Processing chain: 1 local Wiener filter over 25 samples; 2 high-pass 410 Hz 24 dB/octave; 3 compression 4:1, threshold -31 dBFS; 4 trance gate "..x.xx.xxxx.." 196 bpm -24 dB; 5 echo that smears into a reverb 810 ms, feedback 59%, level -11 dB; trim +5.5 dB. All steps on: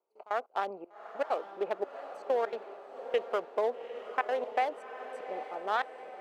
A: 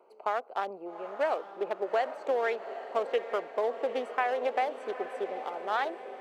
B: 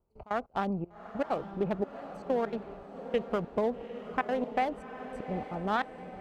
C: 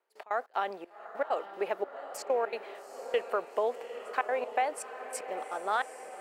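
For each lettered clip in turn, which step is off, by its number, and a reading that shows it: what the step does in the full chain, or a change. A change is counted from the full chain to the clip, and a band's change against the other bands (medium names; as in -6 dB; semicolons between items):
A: 4, 250 Hz band +2.0 dB; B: 2, 250 Hz band +15.0 dB; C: 1, momentary loudness spread change -2 LU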